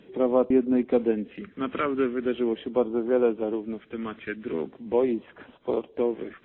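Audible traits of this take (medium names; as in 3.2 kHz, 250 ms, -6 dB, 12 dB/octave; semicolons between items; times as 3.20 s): phasing stages 2, 0.41 Hz, lowest notch 770–1700 Hz; AAC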